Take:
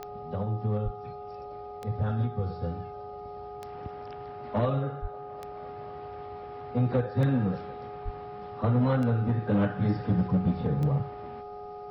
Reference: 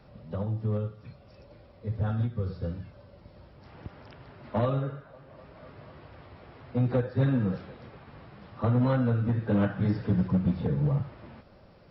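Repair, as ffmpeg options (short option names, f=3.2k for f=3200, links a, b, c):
-filter_complex "[0:a]adeclick=t=4,bandreject=f=413.6:t=h:w=4,bandreject=f=827.2:t=h:w=4,bandreject=f=1.2408k:t=h:w=4,bandreject=f=730:w=30,asplit=3[a][b][c];[a]afade=t=out:st=0.84:d=0.02[d];[b]highpass=f=140:w=0.5412,highpass=f=140:w=1.3066,afade=t=in:st=0.84:d=0.02,afade=t=out:st=0.96:d=0.02[e];[c]afade=t=in:st=0.96:d=0.02[f];[d][e][f]amix=inputs=3:normalize=0,asplit=3[g][h][i];[g]afade=t=out:st=5.01:d=0.02[j];[h]highpass=f=140:w=0.5412,highpass=f=140:w=1.3066,afade=t=in:st=5.01:d=0.02,afade=t=out:st=5.13:d=0.02[k];[i]afade=t=in:st=5.13:d=0.02[l];[j][k][l]amix=inputs=3:normalize=0,asplit=3[m][n][o];[m]afade=t=out:st=8.04:d=0.02[p];[n]highpass=f=140:w=0.5412,highpass=f=140:w=1.3066,afade=t=in:st=8.04:d=0.02,afade=t=out:st=8.16:d=0.02[q];[o]afade=t=in:st=8.16:d=0.02[r];[p][q][r]amix=inputs=3:normalize=0"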